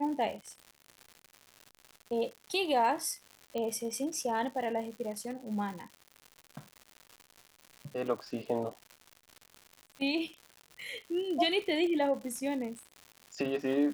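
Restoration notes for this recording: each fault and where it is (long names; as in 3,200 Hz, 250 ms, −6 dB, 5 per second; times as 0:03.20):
surface crackle 190 per second −40 dBFS
0:03.58: click −24 dBFS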